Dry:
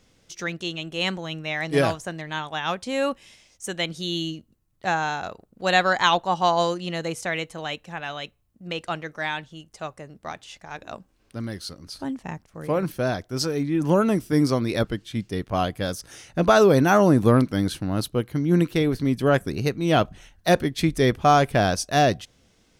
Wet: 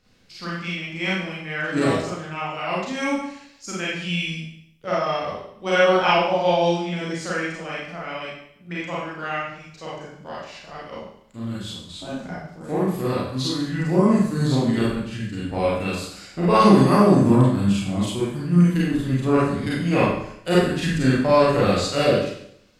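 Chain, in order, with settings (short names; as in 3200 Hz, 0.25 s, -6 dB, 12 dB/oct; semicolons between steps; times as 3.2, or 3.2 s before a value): formant shift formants -4 st; Schroeder reverb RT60 0.7 s, combs from 31 ms, DRR -7.5 dB; gain -6 dB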